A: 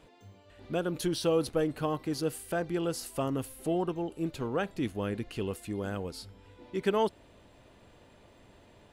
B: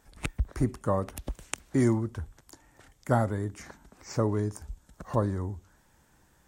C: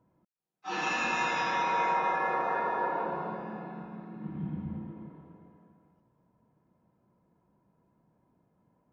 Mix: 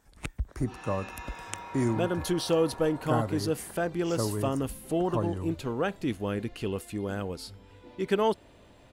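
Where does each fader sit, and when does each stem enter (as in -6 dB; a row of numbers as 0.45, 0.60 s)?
+2.0, -3.5, -14.0 dB; 1.25, 0.00, 0.00 s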